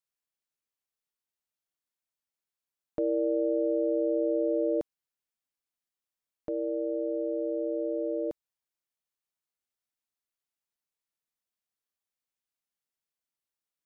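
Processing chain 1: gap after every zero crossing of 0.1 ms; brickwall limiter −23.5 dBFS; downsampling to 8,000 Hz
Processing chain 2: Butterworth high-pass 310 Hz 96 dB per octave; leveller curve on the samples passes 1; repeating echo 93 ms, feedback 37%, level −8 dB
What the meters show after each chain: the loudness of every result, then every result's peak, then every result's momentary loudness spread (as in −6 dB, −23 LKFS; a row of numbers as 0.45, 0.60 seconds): −32.0, −30.0 LKFS; −23.5, −19.5 dBFS; 6, 9 LU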